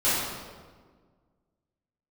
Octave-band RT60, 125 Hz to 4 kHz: 2.0, 2.0, 1.7, 1.5, 1.2, 1.0 seconds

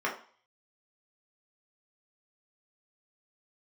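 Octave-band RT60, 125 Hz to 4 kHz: 0.35, 0.35, 0.40, 0.50, 0.45, 0.50 seconds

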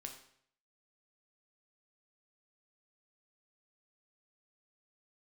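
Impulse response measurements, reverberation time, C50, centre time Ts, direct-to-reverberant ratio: 0.65 s, 8.0 dB, 19 ms, 3.0 dB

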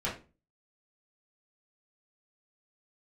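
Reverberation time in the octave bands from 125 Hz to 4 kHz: 0.45, 0.45, 0.35, 0.30, 0.30, 0.25 seconds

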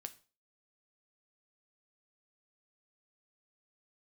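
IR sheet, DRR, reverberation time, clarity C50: 8.5 dB, 0.40 s, 17.5 dB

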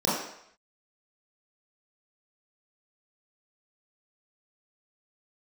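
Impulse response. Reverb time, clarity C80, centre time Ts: 0.70 s, 4.5 dB, 62 ms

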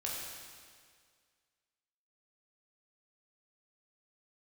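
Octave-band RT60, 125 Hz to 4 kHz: 1.9, 1.9, 2.0, 1.9, 1.9, 1.8 seconds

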